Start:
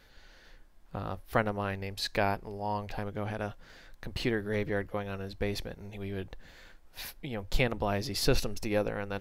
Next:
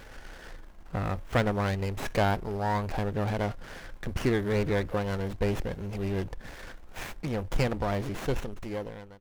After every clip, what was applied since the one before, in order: ending faded out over 2.09 s; power-law curve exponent 0.7; running maximum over 9 samples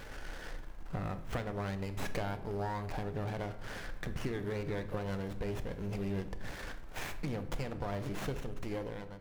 compressor, threshold -35 dBFS, peak gain reduction 14.5 dB; shoebox room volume 270 m³, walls mixed, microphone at 0.38 m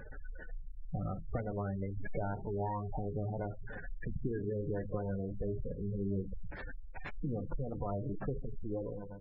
spectral gate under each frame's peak -15 dB strong; gain +1 dB

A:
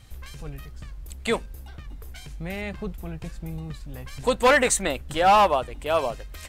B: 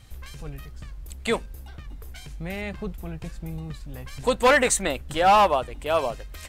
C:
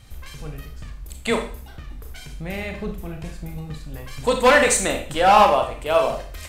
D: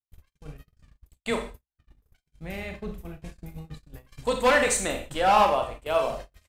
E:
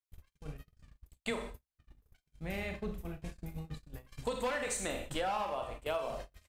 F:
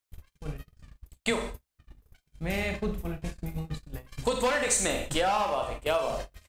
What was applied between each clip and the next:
nothing audible
reverb RT60 0.45 s, pre-delay 26 ms, DRR 3.5 dB; gain +2 dB
gate -31 dBFS, range -55 dB; gain -6 dB
compressor 16:1, threshold -29 dBFS, peak gain reduction 15.5 dB; gain -2.5 dB
dynamic EQ 6400 Hz, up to +5 dB, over -59 dBFS, Q 0.95; gain +8 dB

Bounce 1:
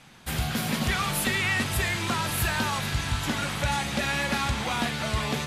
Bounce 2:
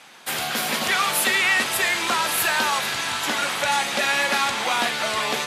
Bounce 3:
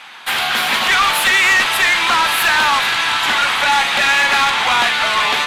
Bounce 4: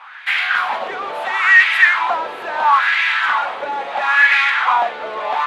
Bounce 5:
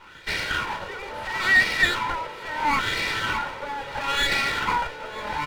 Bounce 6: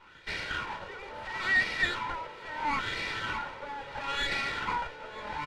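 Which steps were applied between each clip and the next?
HPF 430 Hz 12 dB/oct; gain +7 dB
band shelf 1800 Hz +10.5 dB 2.7 oct; tube stage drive 10 dB, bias 0.25; gain +1.5 dB
wah 0.74 Hz 450–2100 Hz, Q 3.6; gain +6.5 dB
minimum comb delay 2.1 ms; echo 0.953 s -20.5 dB; gain -7.5 dB
air absorption 53 m; downsampling 32000 Hz; gain -7.5 dB

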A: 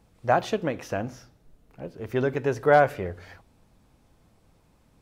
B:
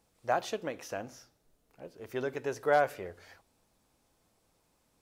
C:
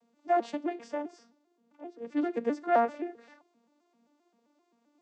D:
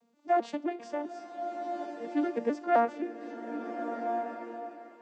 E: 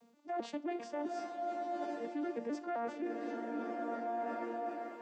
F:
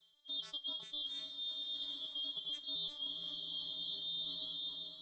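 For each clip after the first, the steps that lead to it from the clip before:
tone controls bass -9 dB, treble +7 dB; gain -7.5 dB
arpeggiated vocoder major triad, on A#3, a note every 0.131 s; gain +3.5 dB
bloom reverb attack 1.44 s, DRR 6 dB
limiter -25 dBFS, peak gain reduction 10.5 dB; reverse; compressor 5:1, threshold -42 dBFS, peak gain reduction 12 dB; reverse; gain +5.5 dB
four-band scrambler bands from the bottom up 2413; gain -4 dB

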